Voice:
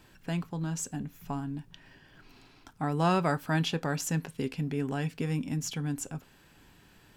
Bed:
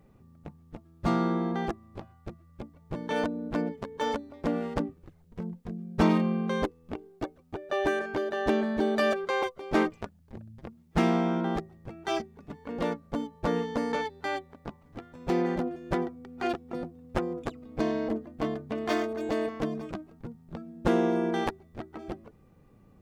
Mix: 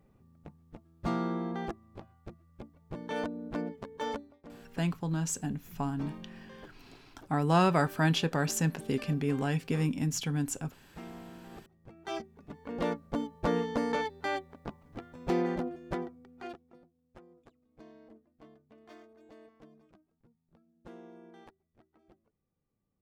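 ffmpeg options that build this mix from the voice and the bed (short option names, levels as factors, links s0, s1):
-filter_complex "[0:a]adelay=4500,volume=1.19[s0];[1:a]volume=5.62,afade=t=out:st=4.18:d=0.23:silence=0.158489,afade=t=in:st=11.49:d=1.48:silence=0.0944061,afade=t=out:st=15.13:d=1.67:silence=0.0595662[s1];[s0][s1]amix=inputs=2:normalize=0"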